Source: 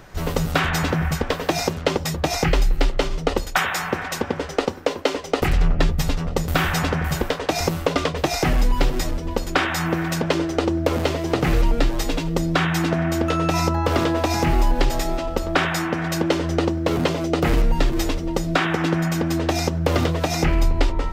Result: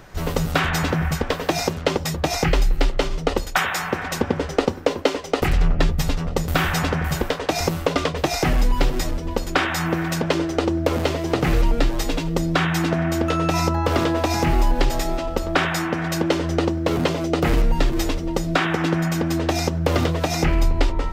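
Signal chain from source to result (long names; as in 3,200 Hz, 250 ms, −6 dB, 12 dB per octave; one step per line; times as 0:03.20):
0:04.03–0:05.09: low-shelf EQ 340 Hz +6 dB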